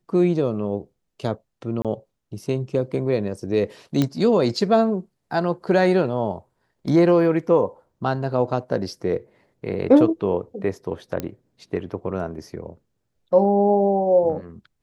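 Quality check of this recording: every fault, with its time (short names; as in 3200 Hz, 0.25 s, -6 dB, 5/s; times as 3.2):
1.82–1.85 gap 27 ms
4.02 pop -8 dBFS
11.2 pop -13 dBFS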